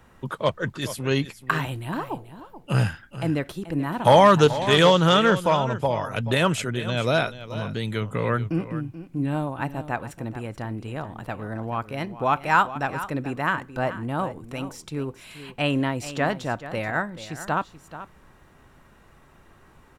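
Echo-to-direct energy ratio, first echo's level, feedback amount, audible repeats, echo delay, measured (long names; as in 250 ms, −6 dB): −13.5 dB, −13.5 dB, repeats not evenly spaced, 1, 432 ms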